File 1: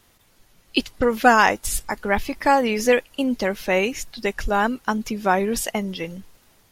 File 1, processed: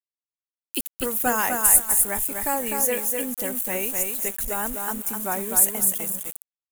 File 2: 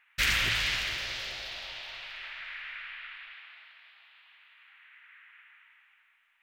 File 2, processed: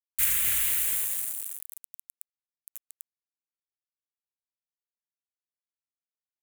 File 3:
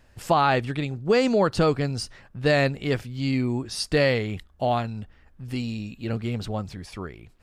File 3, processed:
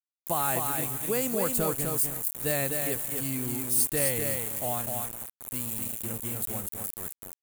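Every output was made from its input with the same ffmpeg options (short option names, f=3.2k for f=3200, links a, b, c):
-af "aecho=1:1:252|504|756|1008:0.596|0.155|0.0403|0.0105,aeval=exprs='val(0)*gte(abs(val(0)),0.0316)':c=same,aexciter=amount=13.5:drive=6.4:freq=7.5k,volume=-10dB"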